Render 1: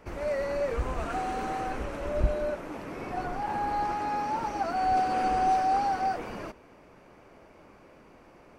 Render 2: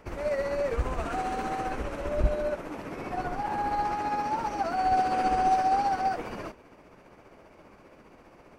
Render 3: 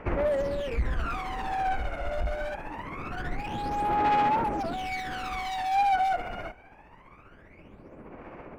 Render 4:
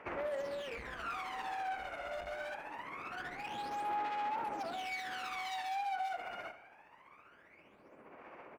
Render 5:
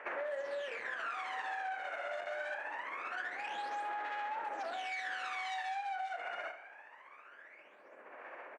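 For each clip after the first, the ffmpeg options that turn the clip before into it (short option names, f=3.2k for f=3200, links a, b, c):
-af "tremolo=f=15:d=0.39,volume=2.5dB"
-af "highshelf=f=3.4k:t=q:w=1.5:g=-10,asoftclip=type=hard:threshold=-29.5dB,aphaser=in_gain=1:out_gain=1:delay=1.4:decay=0.72:speed=0.24:type=sinusoidal,volume=-1.5dB"
-filter_complex "[0:a]highpass=f=850:p=1,acompressor=threshold=-31dB:ratio=6,asplit=2[a][b];[b]adelay=83,lowpass=f=3.5k:p=1,volume=-11.5dB,asplit=2[c][d];[d]adelay=83,lowpass=f=3.5k:p=1,volume=0.52,asplit=2[e][f];[f]adelay=83,lowpass=f=3.5k:p=1,volume=0.52,asplit=2[g][h];[h]adelay=83,lowpass=f=3.5k:p=1,volume=0.52,asplit=2[i][j];[j]adelay=83,lowpass=f=3.5k:p=1,volume=0.52,asplit=2[k][l];[l]adelay=83,lowpass=f=3.5k:p=1,volume=0.52[m];[a][c][e][g][i][k][m]amix=inputs=7:normalize=0,volume=-4dB"
-filter_complex "[0:a]highpass=460,equalizer=f=580:t=q:w=4:g=4,equalizer=f=1.7k:t=q:w=4:g=9,equalizer=f=5k:t=q:w=4:g=-5,lowpass=f=8.6k:w=0.5412,lowpass=f=8.6k:w=1.3066,asplit=2[a][b];[b]adelay=33,volume=-11.5dB[c];[a][c]amix=inputs=2:normalize=0,acompressor=threshold=-38dB:ratio=6,volume=2dB"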